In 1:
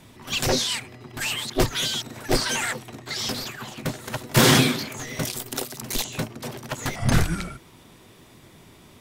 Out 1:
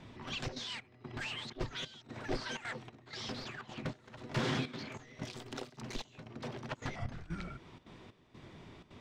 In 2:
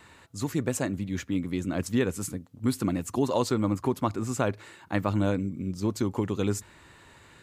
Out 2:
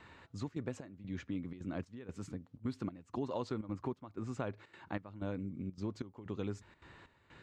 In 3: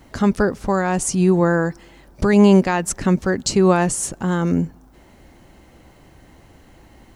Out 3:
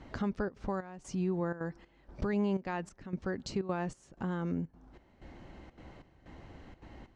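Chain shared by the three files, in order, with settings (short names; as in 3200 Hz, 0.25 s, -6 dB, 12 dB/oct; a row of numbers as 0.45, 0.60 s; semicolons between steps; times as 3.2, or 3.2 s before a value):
compressor 2:1, threshold -39 dBFS; step gate "xxxxxx.xxx..." 187 bpm -12 dB; air absorption 150 m; gain -2.5 dB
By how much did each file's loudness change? -17.0, -13.0, -18.0 LU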